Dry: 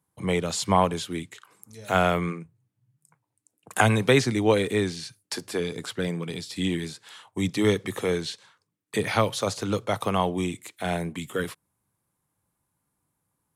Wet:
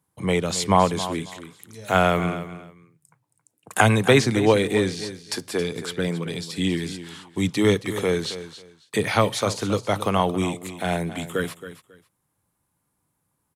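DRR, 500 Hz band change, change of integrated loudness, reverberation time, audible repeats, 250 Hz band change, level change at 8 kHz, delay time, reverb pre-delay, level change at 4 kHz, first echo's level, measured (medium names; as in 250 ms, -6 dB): no reverb, +3.5 dB, +3.0 dB, no reverb, 2, +3.5 dB, +3.0 dB, 272 ms, no reverb, +3.0 dB, -13.0 dB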